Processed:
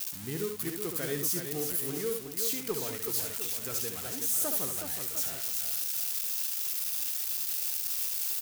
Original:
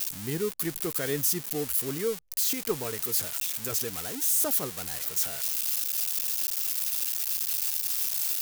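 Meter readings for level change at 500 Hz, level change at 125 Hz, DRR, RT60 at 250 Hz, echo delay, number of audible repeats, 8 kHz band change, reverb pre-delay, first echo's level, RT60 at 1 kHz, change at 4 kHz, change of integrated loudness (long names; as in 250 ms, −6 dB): −3.0 dB, −3.0 dB, no reverb audible, no reverb audible, 70 ms, 3, −3.0 dB, no reverb audible, −6.0 dB, no reverb audible, −3.0 dB, −3.0 dB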